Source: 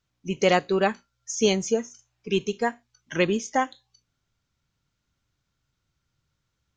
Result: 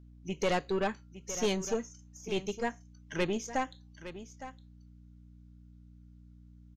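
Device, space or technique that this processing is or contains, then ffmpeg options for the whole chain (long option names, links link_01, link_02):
valve amplifier with mains hum: -af "aeval=exprs='(tanh(7.08*val(0)+0.4)-tanh(0.4))/7.08':channel_layout=same,aeval=exprs='val(0)+0.00447*(sin(2*PI*60*n/s)+sin(2*PI*2*60*n/s)/2+sin(2*PI*3*60*n/s)/3+sin(2*PI*4*60*n/s)/4+sin(2*PI*5*60*n/s)/5)':channel_layout=same,aecho=1:1:861:0.224,volume=-5.5dB"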